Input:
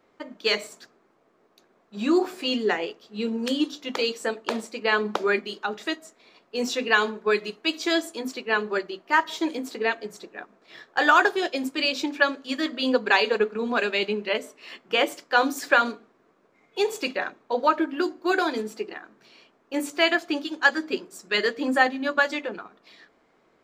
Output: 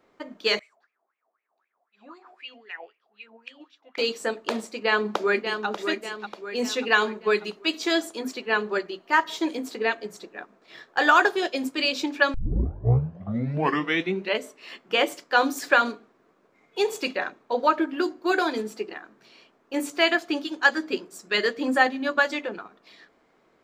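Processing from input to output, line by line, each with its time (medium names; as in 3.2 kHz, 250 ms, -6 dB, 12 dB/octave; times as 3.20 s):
0.59–3.98 s: wah-wah 3.9 Hz 670–2500 Hz, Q 8.8
4.74–5.67 s: echo throw 590 ms, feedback 50%, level -7.5 dB
12.34 s: tape start 1.99 s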